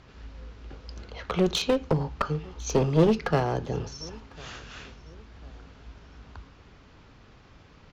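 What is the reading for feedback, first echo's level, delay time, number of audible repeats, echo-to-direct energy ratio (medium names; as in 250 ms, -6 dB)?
34%, -24.0 dB, 1051 ms, 2, -23.5 dB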